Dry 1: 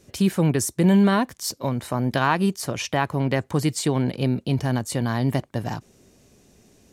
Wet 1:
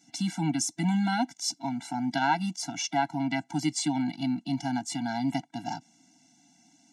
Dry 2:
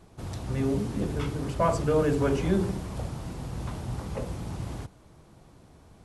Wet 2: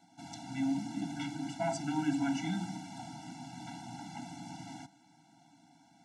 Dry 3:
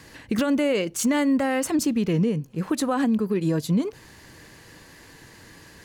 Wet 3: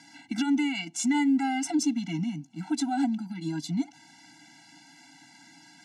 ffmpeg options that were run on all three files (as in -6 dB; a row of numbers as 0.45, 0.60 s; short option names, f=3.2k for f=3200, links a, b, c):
-af "highpass=f=200:w=0.5412,highpass=f=200:w=1.3066,equalizer=f=210:t=q:w=4:g=-8,equalizer=f=1.4k:t=q:w=4:g=-6,equalizer=f=6k:t=q:w=4:g=4,lowpass=f=8.7k:w=0.5412,lowpass=f=8.7k:w=1.3066,afftfilt=real='re*eq(mod(floor(b*sr/1024/330),2),0)':imag='im*eq(mod(floor(b*sr/1024/330),2),0)':win_size=1024:overlap=0.75"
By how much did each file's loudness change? -6.5, -8.0, -5.0 LU